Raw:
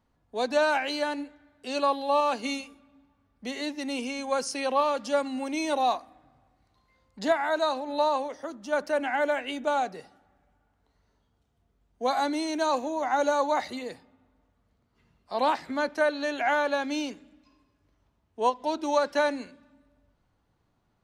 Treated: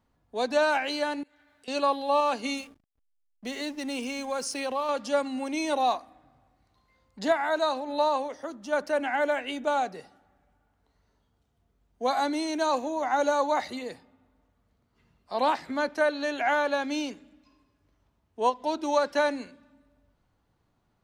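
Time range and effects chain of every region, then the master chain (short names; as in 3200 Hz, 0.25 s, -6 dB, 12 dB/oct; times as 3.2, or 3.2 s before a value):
1.23–1.68 compressor, threshold -57 dBFS + tilt shelf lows -6.5 dB, about 780 Hz
2.57–4.89 high shelf 8100 Hz +6.5 dB + compressor 2:1, threshold -29 dBFS + backlash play -45.5 dBFS
whole clip: dry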